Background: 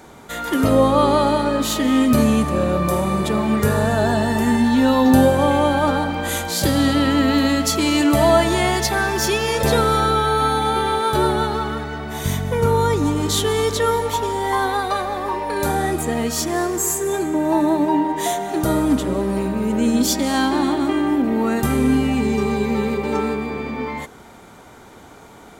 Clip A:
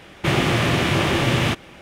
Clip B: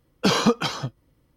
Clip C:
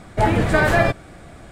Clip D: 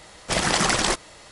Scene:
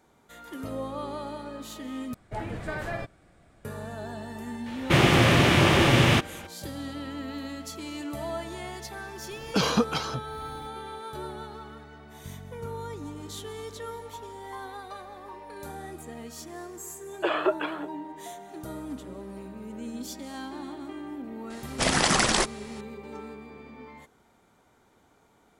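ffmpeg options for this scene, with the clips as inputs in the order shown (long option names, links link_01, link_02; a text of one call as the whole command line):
ffmpeg -i bed.wav -i cue0.wav -i cue1.wav -i cue2.wav -i cue3.wav -filter_complex "[2:a]asplit=2[link_01][link_02];[0:a]volume=-19.5dB[link_03];[link_01]acompressor=mode=upward:threshold=-25dB:ratio=2.5:attack=3.2:release=140:knee=2.83:detection=peak[link_04];[link_02]highpass=frequency=210:width_type=q:width=0.5412,highpass=frequency=210:width_type=q:width=1.307,lowpass=frequency=2800:width_type=q:width=0.5176,lowpass=frequency=2800:width_type=q:width=0.7071,lowpass=frequency=2800:width_type=q:width=1.932,afreqshift=150[link_05];[link_03]asplit=2[link_06][link_07];[link_06]atrim=end=2.144[link_08];[3:a]atrim=end=1.51,asetpts=PTS-STARTPTS,volume=-17dB[link_09];[link_07]atrim=start=3.646[link_10];[1:a]atrim=end=1.81,asetpts=PTS-STARTPTS,afade=type=in:duration=0.004:curve=hsin,afade=type=out:start_time=1.806:duration=0.004:curve=hsin,adelay=4660[link_11];[link_04]atrim=end=1.36,asetpts=PTS-STARTPTS,volume=-4.5dB,afade=type=in:duration=0.004:curve=hsin,afade=type=out:start_time=1.356:duration=0.004:curve=hsin,adelay=9310[link_12];[link_05]atrim=end=1.36,asetpts=PTS-STARTPTS,volume=-4.5dB,afade=type=in:duration=0.004:curve=hsin,afade=type=out:start_time=1.356:duration=0.004:curve=hsin,adelay=16990[link_13];[4:a]atrim=end=1.31,asetpts=PTS-STARTPTS,volume=-1.5dB,afade=type=in:duration=0.004:curve=hsin,afade=type=out:start_time=1.306:duration=0.004:curve=hsin,adelay=21500[link_14];[link_08][link_09]acrossfade=duration=0.004:curve1=hsin:curve2=hsin[link_15];[link_15][link_10]acrossfade=duration=0.004:curve1=hsin:curve2=hsin[link_16];[link_16][link_11][link_12][link_13][link_14]amix=inputs=5:normalize=0" out.wav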